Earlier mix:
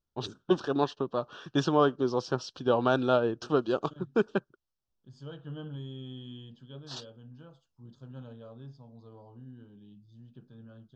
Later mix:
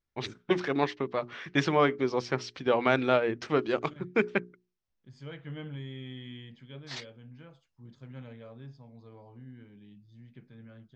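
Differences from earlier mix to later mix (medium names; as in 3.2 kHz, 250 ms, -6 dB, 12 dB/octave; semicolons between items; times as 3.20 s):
first voice: add hum notches 60/120/180/240/300/360/420 Hz; master: remove Butterworth band-stop 2.1 kHz, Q 1.5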